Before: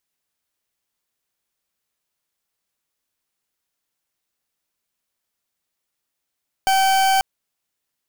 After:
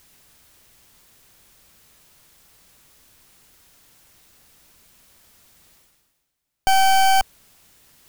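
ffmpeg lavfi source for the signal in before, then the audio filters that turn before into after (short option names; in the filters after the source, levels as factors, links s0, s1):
-f lavfi -i "aevalsrc='0.15*(2*lt(mod(770*t,1),0.4)-1)':d=0.54:s=44100"
-af "lowshelf=f=170:g=11,areverse,acompressor=mode=upward:threshold=0.02:ratio=2.5,areverse"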